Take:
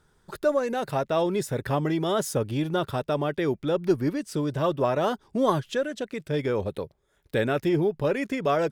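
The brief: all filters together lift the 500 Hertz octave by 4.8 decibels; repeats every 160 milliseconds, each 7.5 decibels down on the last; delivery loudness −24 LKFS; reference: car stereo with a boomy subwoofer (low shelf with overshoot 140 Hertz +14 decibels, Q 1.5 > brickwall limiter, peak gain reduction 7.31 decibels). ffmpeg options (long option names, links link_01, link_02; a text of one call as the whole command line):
ffmpeg -i in.wav -af "lowshelf=frequency=140:width_type=q:width=1.5:gain=14,equalizer=frequency=500:width_type=o:gain=7,aecho=1:1:160|320|480|640|800:0.422|0.177|0.0744|0.0312|0.0131,alimiter=limit=-14dB:level=0:latency=1" out.wav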